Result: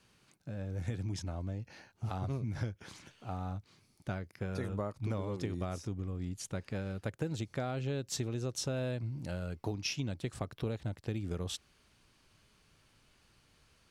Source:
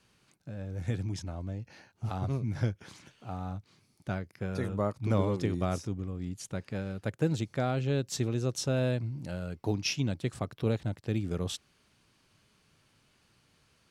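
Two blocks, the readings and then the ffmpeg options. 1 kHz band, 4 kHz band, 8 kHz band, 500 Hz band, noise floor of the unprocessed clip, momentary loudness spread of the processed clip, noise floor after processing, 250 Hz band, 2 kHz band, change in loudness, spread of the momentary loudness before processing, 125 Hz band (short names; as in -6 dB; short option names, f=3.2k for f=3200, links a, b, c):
-5.0 dB, -3.5 dB, -2.5 dB, -6.0 dB, -69 dBFS, 7 LU, -69 dBFS, -6.0 dB, -4.5 dB, -5.0 dB, 12 LU, -5.0 dB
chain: -af "asubboost=boost=2.5:cutoff=72,acompressor=threshold=-32dB:ratio=6"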